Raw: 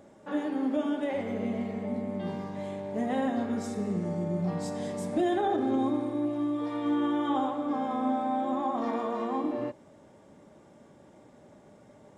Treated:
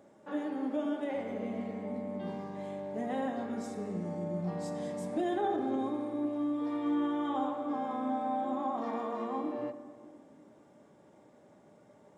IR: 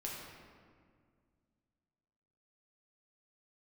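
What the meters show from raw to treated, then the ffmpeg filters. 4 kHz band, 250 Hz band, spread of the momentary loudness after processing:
−6.0 dB, −4.5 dB, 8 LU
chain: -filter_complex "[0:a]highpass=frequency=180:poles=1,asplit=2[link_01][link_02];[1:a]atrim=start_sample=2205,lowpass=2300[link_03];[link_02][link_03]afir=irnorm=-1:irlink=0,volume=-7dB[link_04];[link_01][link_04]amix=inputs=2:normalize=0,volume=-6dB"

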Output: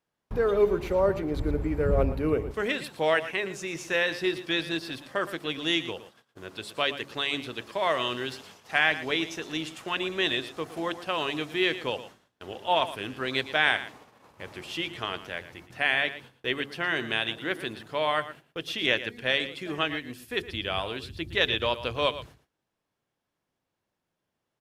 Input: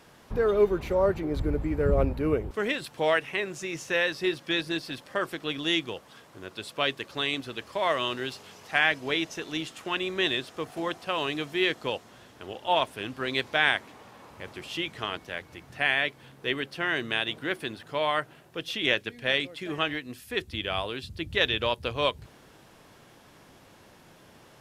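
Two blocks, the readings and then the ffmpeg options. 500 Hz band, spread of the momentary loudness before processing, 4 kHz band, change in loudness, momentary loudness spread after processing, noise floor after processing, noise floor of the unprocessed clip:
0.0 dB, 12 LU, 0.0 dB, 0.0 dB, 12 LU, −83 dBFS, −55 dBFS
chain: -af "bandreject=frequency=70.03:width_type=h:width=4,bandreject=frequency=140.06:width_type=h:width=4,bandreject=frequency=210.09:width_type=h:width=4,bandreject=frequency=280.12:width_type=h:width=4,bandreject=frequency=350.15:width_type=h:width=4,bandreject=frequency=420.18:width_type=h:width=4,agate=range=-29dB:threshold=-48dB:ratio=16:detection=peak,aecho=1:1:115:0.211"

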